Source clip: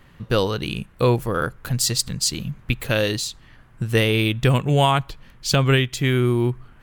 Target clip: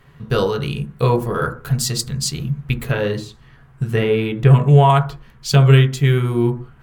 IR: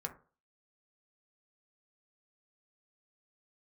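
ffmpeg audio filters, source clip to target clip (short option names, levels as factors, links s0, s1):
-filter_complex "[1:a]atrim=start_sample=2205,afade=t=out:st=0.22:d=0.01,atrim=end_sample=10143,asetrate=39249,aresample=44100[s0];[0:a][s0]afir=irnorm=-1:irlink=0,asettb=1/sr,asplit=3[s1][s2][s3];[s1]atrim=end=2.854[s4];[s2]atrim=start=2.85:end=4.9,asetpts=PTS-STARTPTS,afade=t=in:d=0.004:c=qsin,afade=t=out:st=2.046:d=0.004:c=qsin,acrossover=split=2700[s5][s6];[s6]acompressor=threshold=0.00794:ratio=4:attack=1:release=60[s7];[s5][s7]amix=inputs=2:normalize=0[s8];[s3]atrim=start=4.896[s9];[s4][s8]acrossfade=d=0.004:c1=hsin:c2=qsin[s10];[s10][s9]acrossfade=d=0.004:c1=qsin:c2=hsin,volume=1.12"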